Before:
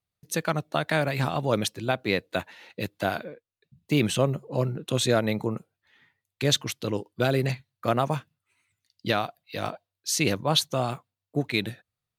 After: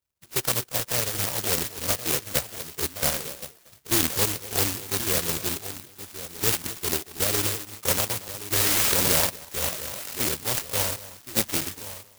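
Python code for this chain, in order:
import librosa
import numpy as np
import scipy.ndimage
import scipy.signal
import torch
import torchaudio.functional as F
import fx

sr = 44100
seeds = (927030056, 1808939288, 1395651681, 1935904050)

p1 = fx.freq_compress(x, sr, knee_hz=2200.0, ratio=1.5)
p2 = fx.rider(p1, sr, range_db=4, speed_s=0.5)
p3 = p2 + fx.echo_single(p2, sr, ms=235, db=-16.5, dry=0)
p4 = fx.spec_paint(p3, sr, seeds[0], shape='rise', start_s=8.52, length_s=0.77, low_hz=2100.0, high_hz=4700.0, level_db=-22.0)
p5 = p4 + 10.0 ** (-12.5 / 20.0) * np.pad(p4, (int(1073 * sr / 1000.0), 0))[:len(p4)]
p6 = fx.pitch_keep_formants(p5, sr, semitones=-4.5)
p7 = (np.kron(scipy.signal.resample_poly(p6, 1, 6), np.eye(6)[0]) * 6)[:len(p6)]
p8 = fx.clock_jitter(p7, sr, seeds[1], jitter_ms=0.13)
y = p8 * librosa.db_to_amplitude(-5.5)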